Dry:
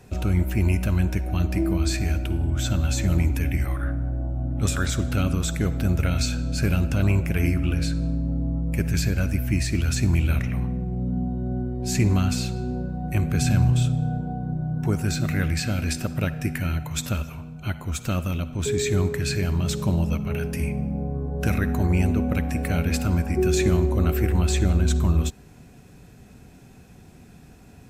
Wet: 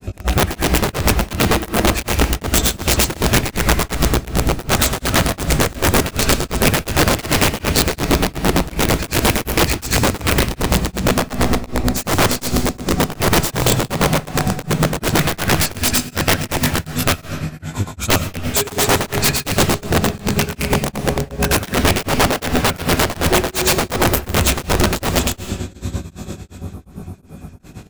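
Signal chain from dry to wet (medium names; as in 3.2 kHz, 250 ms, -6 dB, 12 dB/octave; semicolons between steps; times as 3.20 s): treble shelf 12 kHz +4.5 dB; echo that smears into a reverb 942 ms, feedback 43%, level -13.5 dB; in parallel at 0 dB: peak limiter -16 dBFS, peak gain reduction 7.5 dB; on the sum: granulator 112 ms, grains 8.8 per s, pitch spread up and down by 0 st; spectral replace 26.64–27.56 s, 1.4–8.6 kHz; doubling 20 ms -2 dB; integer overflow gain 15 dB; on a send at -8.5 dB: reverberation RT60 1.1 s, pre-delay 70 ms; on the sum: tremolo of two beating tones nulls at 2.7 Hz; trim +7.5 dB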